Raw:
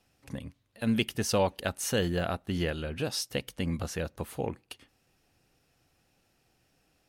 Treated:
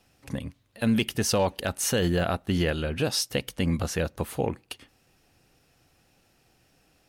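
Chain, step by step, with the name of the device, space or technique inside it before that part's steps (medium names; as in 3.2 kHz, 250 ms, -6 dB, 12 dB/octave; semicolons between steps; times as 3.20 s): clipper into limiter (hard clipper -16 dBFS, distortion -33 dB; peak limiter -20.5 dBFS, peak gain reduction 4.5 dB); trim +6 dB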